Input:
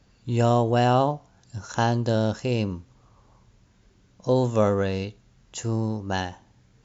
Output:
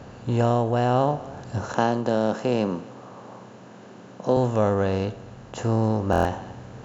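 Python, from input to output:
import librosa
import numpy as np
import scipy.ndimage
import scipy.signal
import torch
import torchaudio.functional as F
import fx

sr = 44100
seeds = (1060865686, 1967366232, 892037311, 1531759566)

y = fx.bin_compress(x, sr, power=0.6)
y = fx.high_shelf(y, sr, hz=2700.0, db=-10.0)
y = y + 10.0 ** (-23.0 / 20.0) * np.pad(y, (int(265 * sr / 1000.0), 0))[:len(y)]
y = fx.rider(y, sr, range_db=3, speed_s=0.5)
y = fx.highpass(y, sr, hz=150.0, slope=24, at=(1.74, 4.37))
y = fx.buffer_glitch(y, sr, at_s=(6.11,), block=1024, repeats=5)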